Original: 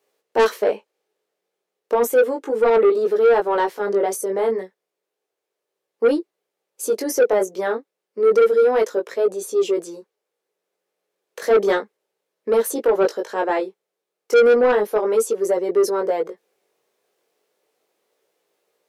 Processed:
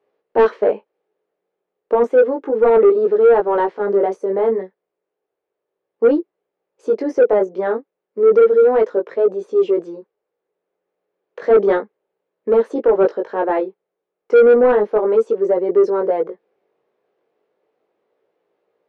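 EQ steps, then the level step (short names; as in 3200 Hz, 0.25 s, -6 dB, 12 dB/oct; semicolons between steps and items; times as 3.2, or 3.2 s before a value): tape spacing loss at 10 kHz 43 dB; +5.5 dB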